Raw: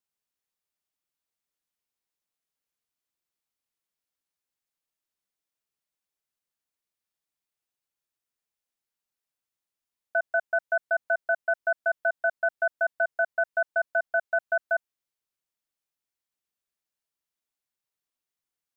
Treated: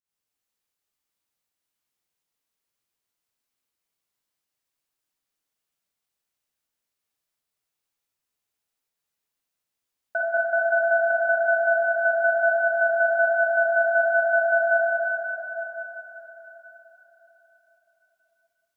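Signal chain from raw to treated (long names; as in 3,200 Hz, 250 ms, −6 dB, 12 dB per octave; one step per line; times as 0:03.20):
fake sidechain pumping 81 BPM, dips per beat 1, −17 dB, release 134 ms
dense smooth reverb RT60 4.7 s, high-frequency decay 0.95×, DRR −4.5 dB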